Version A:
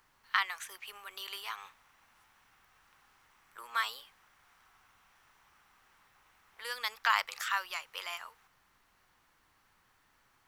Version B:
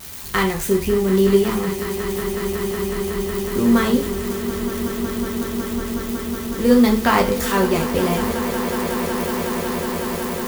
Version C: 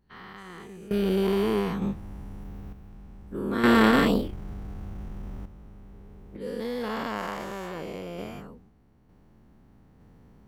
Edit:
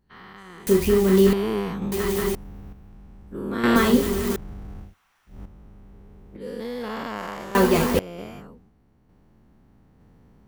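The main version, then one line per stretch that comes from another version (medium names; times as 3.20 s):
C
0.67–1.33 s: from B
1.92–2.35 s: from B
3.76–4.36 s: from B
4.87–5.34 s: from A, crossfade 0.16 s
7.55–7.99 s: from B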